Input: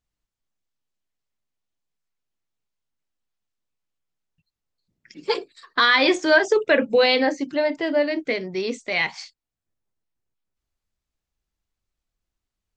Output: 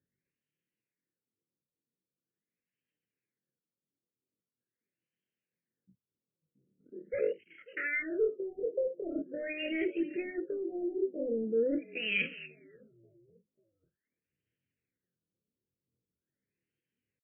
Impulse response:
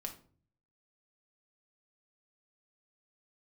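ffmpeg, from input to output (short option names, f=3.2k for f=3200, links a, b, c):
-filter_complex "[0:a]acrossover=split=6200[a][b];[b]acompressor=threshold=-48dB:ratio=4:attack=1:release=60[c];[a][c]amix=inputs=2:normalize=0,highpass=f=98:w=0.5412,highpass=f=98:w=1.3066,areverse,acompressor=threshold=-28dB:ratio=16,areverse,asetrate=72056,aresample=44100,atempo=0.612027,asplit=4[d][e][f][g];[e]adelay=400,afreqshift=-48,volume=-22dB[h];[f]adelay=800,afreqshift=-96,volume=-28.4dB[i];[g]adelay=1200,afreqshift=-144,volume=-34.8dB[j];[d][h][i][j]amix=inputs=4:normalize=0,asplit=2[k][l];[l]aeval=exprs='0.0355*(abs(mod(val(0)/0.0355+3,4)-2)-1)':c=same,volume=-11.5dB[m];[k][m]amix=inputs=2:normalize=0,aphaser=in_gain=1:out_gain=1:delay=4.6:decay=0.31:speed=0.93:type=sinusoidal,asetrate=32667,aresample=44100,asuperstop=centerf=930:order=8:qfactor=0.88,afftfilt=real='re*lt(b*sr/1024,970*pow(3300/970,0.5+0.5*sin(2*PI*0.43*pts/sr)))':imag='im*lt(b*sr/1024,970*pow(3300/970,0.5+0.5*sin(2*PI*0.43*pts/sr)))':win_size=1024:overlap=0.75"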